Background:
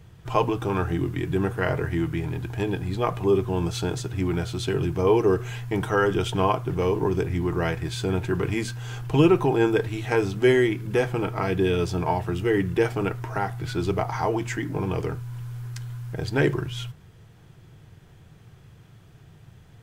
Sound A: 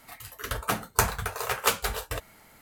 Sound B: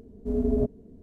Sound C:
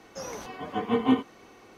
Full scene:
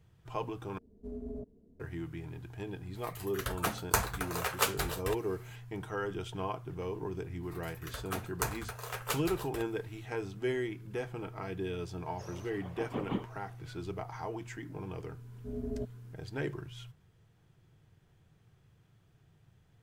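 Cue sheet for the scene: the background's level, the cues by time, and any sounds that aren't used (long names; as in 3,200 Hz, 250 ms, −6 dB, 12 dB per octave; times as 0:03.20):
background −14.5 dB
0:00.78: overwrite with B −12.5 dB + brickwall limiter −21 dBFS
0:02.95: mix in A −5 dB
0:07.43: mix in A −11 dB
0:12.03: mix in C −13 dB + random phases in short frames
0:15.19: mix in B −13 dB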